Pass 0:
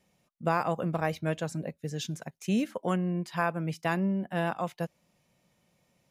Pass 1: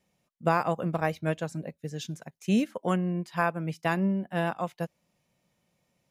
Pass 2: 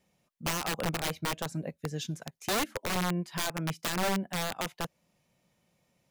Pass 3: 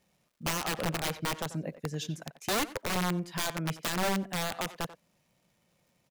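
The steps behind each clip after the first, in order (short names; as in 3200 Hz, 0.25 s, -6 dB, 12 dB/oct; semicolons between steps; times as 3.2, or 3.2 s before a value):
upward expander 1.5:1, over -38 dBFS; gain +3.5 dB
in parallel at -2.5 dB: compressor 16:1, threshold -32 dBFS, peak gain reduction 15 dB; on the sum: wrapped overs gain 20.5 dB; gain -3.5 dB
crackle 270/s -61 dBFS; speakerphone echo 90 ms, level -11 dB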